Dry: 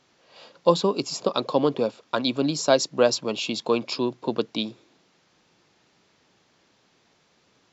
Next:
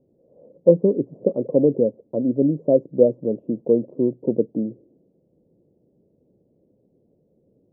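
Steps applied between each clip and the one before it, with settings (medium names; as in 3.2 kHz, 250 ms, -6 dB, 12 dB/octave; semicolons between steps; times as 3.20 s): elliptic low-pass 540 Hz, stop band 70 dB; trim +6 dB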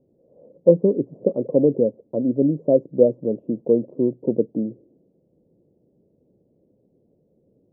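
no audible change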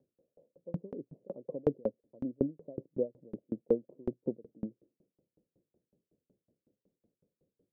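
sawtooth tremolo in dB decaying 5.4 Hz, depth 37 dB; trim -6.5 dB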